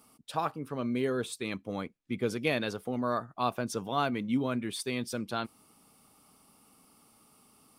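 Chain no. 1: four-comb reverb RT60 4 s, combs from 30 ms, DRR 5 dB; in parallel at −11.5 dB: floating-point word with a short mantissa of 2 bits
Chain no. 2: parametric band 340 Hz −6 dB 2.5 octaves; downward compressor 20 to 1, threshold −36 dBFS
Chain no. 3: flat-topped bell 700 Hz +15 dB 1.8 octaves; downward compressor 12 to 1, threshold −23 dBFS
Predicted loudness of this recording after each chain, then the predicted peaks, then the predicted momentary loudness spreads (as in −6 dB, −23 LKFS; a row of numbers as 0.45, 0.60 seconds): −30.0, −42.0, −30.0 LKFS; −12.5, −24.5, −12.0 dBFS; 15, 21, 4 LU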